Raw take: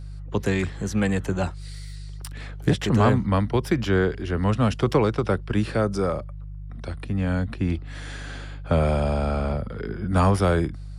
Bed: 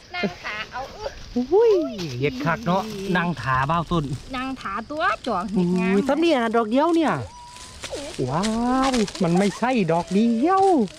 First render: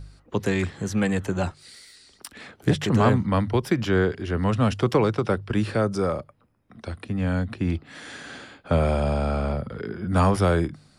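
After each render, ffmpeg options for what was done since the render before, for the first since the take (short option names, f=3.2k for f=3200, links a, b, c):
-af "bandreject=f=50:t=h:w=4,bandreject=f=100:t=h:w=4,bandreject=f=150:t=h:w=4"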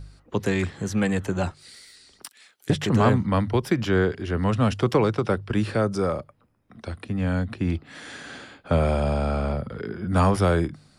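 -filter_complex "[0:a]asettb=1/sr,asplit=3[a][b][c];[a]atrim=end=2.284[d];[b]atrim=start=2.28:end=2.7,asetpts=PTS-STARTPTS,afade=t=in:d=0.004:c=qsin,afade=t=out:st=0.416:d=0.004:c=qsin,aderivative[e];[c]atrim=start=2.696[f];[d][e]acrossfade=d=0.004:c1=hsin:c2=qsin[g];[g][f]acrossfade=d=0.004:c1=qsin:c2=hsin"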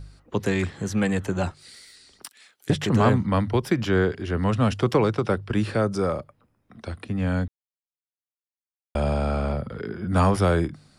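-filter_complex "[0:a]asplit=3[a][b][c];[a]atrim=end=7.48,asetpts=PTS-STARTPTS,afade=t=out:st=7.476:d=0.004:c=hsin[d];[b]atrim=start=7.48:end=8.95,asetpts=PTS-STARTPTS,volume=0[e];[c]atrim=start=8.95,asetpts=PTS-STARTPTS,afade=t=in:d=0.004:c=hsin[f];[d][e][f]concat=n=3:v=0:a=1"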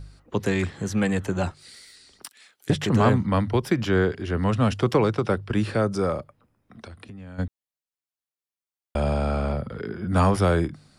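-filter_complex "[0:a]asplit=3[a][b][c];[a]afade=t=out:st=6.85:d=0.02[d];[b]acompressor=threshold=-39dB:ratio=5:attack=3.2:release=140:knee=1:detection=peak,afade=t=in:st=6.85:d=0.02,afade=t=out:st=7.38:d=0.02[e];[c]afade=t=in:st=7.38:d=0.02[f];[d][e][f]amix=inputs=3:normalize=0"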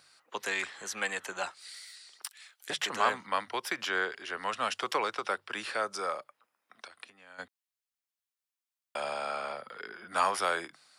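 -af "highpass=980"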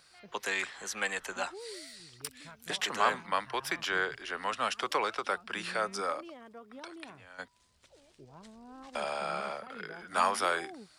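-filter_complex "[1:a]volume=-29.5dB[a];[0:a][a]amix=inputs=2:normalize=0"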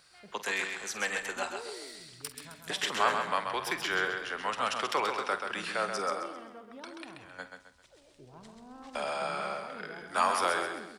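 -filter_complex "[0:a]asplit=2[a][b];[b]adelay=48,volume=-13.5dB[c];[a][c]amix=inputs=2:normalize=0,aecho=1:1:132|264|396|528:0.501|0.185|0.0686|0.0254"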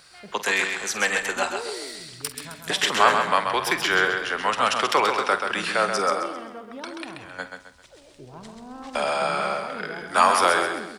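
-af "volume=9.5dB"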